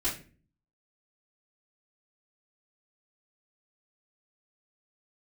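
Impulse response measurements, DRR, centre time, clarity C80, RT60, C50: -10.5 dB, 29 ms, 14.0 dB, 0.40 s, 8.0 dB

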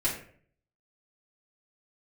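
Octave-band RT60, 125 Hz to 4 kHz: 0.75 s, 0.60 s, 0.60 s, 0.45 s, 0.50 s, 0.35 s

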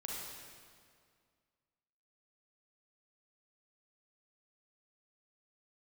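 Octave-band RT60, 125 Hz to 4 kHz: 2.2 s, 2.3 s, 2.1 s, 2.0 s, 1.9 s, 1.7 s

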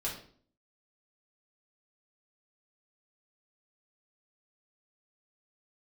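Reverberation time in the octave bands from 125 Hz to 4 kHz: 0.65 s, 0.70 s, 0.55 s, 0.45 s, 0.45 s, 0.45 s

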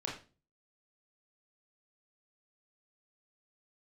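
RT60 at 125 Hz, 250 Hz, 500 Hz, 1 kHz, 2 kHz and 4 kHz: 0.55 s, 0.50 s, 0.35 s, 0.30 s, 0.30 s, 0.30 s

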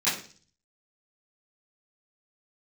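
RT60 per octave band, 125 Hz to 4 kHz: 0.75 s, 0.55 s, 0.45 s, 0.40 s, 0.40 s, 0.55 s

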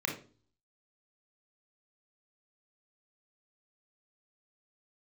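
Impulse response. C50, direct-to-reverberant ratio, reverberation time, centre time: 7.5 dB, 0.5 dB, 0.40 s, 23 ms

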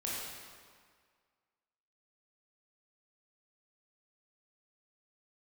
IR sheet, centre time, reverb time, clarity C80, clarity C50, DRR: 117 ms, 1.8 s, 0.0 dB, -2.0 dB, -6.5 dB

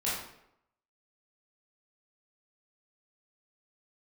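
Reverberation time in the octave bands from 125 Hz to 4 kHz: 0.70 s, 0.75 s, 0.80 s, 0.75 s, 0.65 s, 0.55 s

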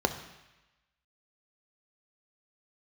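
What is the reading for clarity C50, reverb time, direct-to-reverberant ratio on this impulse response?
11.0 dB, 1.0 s, 7.5 dB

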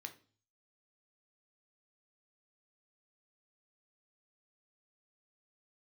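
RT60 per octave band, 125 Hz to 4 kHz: 0.75 s, 0.50 s, 0.45 s, 0.40 s, 0.35 s, 0.45 s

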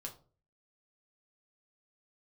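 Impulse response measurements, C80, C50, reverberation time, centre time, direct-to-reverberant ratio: 18.0 dB, 12.5 dB, 0.40 s, 13 ms, 0.5 dB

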